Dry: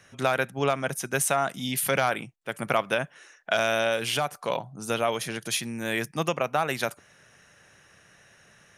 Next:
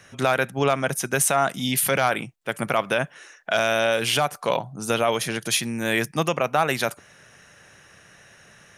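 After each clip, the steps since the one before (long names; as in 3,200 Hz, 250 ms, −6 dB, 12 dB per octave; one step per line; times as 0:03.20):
brickwall limiter −13.5 dBFS, peak gain reduction 5.5 dB
level +5.5 dB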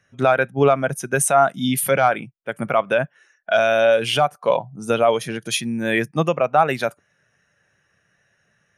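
every bin expanded away from the loudest bin 1.5 to 1
level +4.5 dB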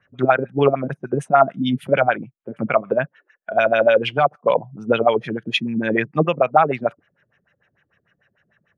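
auto-filter low-pass sine 6.7 Hz 240–3,200 Hz
level −1 dB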